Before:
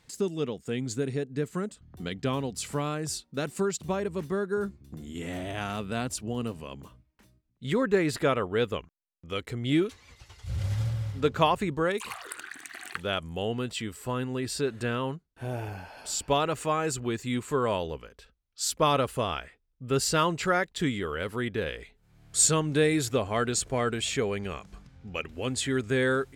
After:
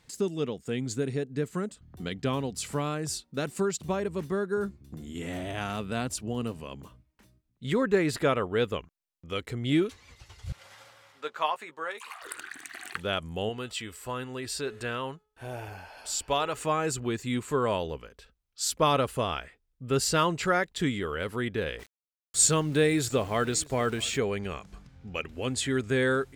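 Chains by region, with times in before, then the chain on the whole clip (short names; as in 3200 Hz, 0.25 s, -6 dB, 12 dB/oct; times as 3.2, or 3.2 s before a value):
10.52–12.22 HPF 940 Hz + high shelf 2000 Hz -9 dB + doubler 13 ms -8 dB
13.49–16.57 bell 180 Hz -8.5 dB 2.3 oct + de-hum 426.4 Hz, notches 8
21.79–24.18 sample gate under -43.5 dBFS + echo 0.658 s -23 dB
whole clip: dry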